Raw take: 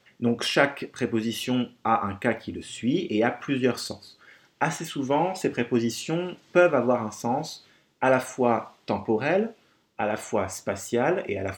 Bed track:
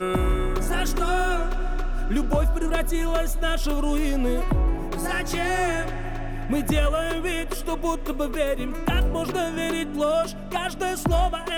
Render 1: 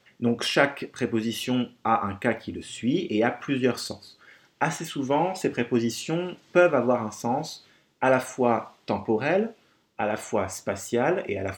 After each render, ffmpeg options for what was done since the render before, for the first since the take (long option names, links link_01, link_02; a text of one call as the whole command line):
ffmpeg -i in.wav -af anull out.wav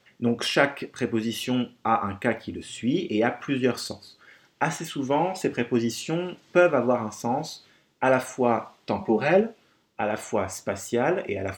ffmpeg -i in.wav -filter_complex "[0:a]asettb=1/sr,asplit=3[link_01][link_02][link_03];[link_01]atrim=end=9.004[link_04];[link_02]atrim=start=9:end=9.41,asetpts=PTS-STARTPTS,afade=type=in:duration=0.004:curve=qsin,afade=type=out:start_time=0.406:duration=0.004:curve=qsin,aecho=1:1:5.3:0.78,atrim=end_sample=18081[link_05];[link_03]atrim=start=9.406[link_06];[link_04][link_05]acrossfade=duration=0.004:curve1=hsin:curve2=qsin[link_07];[link_07][link_06]acrossfade=duration=0.004:curve1=qsin:curve2=hsin" out.wav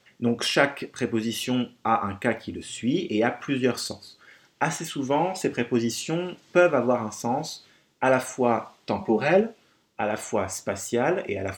ffmpeg -i in.wav -af "equalizer=frequency=7900:width=0.65:gain=3.5" out.wav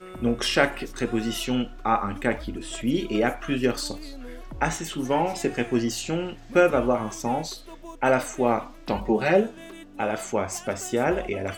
ffmpeg -i in.wav -i bed.wav -filter_complex "[1:a]volume=-16.5dB[link_01];[0:a][link_01]amix=inputs=2:normalize=0" out.wav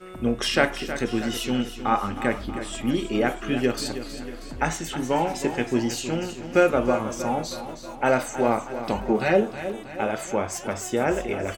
ffmpeg -i in.wav -af "aecho=1:1:318|636|954|1272|1590|1908:0.266|0.146|0.0805|0.0443|0.0243|0.0134" out.wav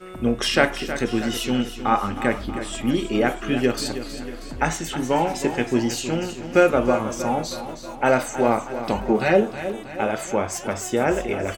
ffmpeg -i in.wav -af "volume=2.5dB" out.wav